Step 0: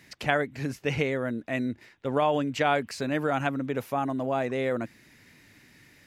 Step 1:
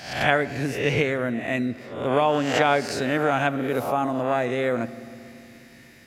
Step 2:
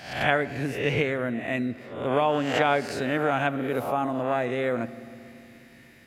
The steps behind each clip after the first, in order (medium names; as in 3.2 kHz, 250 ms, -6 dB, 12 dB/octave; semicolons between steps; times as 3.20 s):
reverse spectral sustain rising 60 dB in 0.65 s; on a send at -15.5 dB: reverberation RT60 2.9 s, pre-delay 4 ms; on the sum: trim +3 dB
FFT filter 3.1 kHz 0 dB, 5.6 kHz -6 dB, 10 kHz -2 dB; trim -2.5 dB